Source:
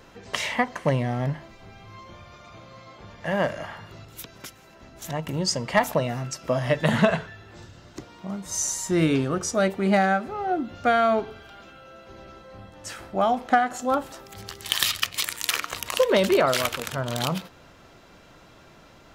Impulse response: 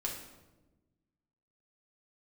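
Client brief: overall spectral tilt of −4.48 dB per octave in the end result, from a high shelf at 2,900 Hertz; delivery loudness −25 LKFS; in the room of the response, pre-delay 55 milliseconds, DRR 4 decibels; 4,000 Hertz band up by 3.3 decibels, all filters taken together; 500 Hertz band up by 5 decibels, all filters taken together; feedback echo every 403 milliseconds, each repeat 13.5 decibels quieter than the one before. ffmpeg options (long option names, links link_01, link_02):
-filter_complex "[0:a]equalizer=frequency=500:width_type=o:gain=6.5,highshelf=frequency=2900:gain=-5.5,equalizer=frequency=4000:width_type=o:gain=8.5,aecho=1:1:403|806:0.211|0.0444,asplit=2[link_01][link_02];[1:a]atrim=start_sample=2205,adelay=55[link_03];[link_02][link_03]afir=irnorm=-1:irlink=0,volume=-6dB[link_04];[link_01][link_04]amix=inputs=2:normalize=0,volume=-4.5dB"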